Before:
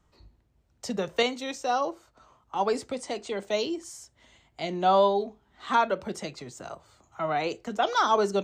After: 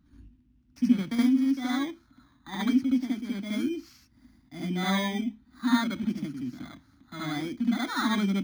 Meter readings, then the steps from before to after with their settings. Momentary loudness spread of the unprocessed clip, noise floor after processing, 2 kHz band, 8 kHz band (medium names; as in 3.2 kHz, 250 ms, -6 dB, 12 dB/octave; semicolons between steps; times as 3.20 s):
18 LU, -63 dBFS, -0.5 dB, -4.0 dB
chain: bit-reversed sample order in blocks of 16 samples; FFT filter 170 Hz 0 dB, 270 Hz +14 dB, 440 Hz -24 dB, 1.5 kHz -4 dB, 5.8 kHz -9 dB, 11 kHz -25 dB; reverse echo 72 ms -4.5 dB; trim +2 dB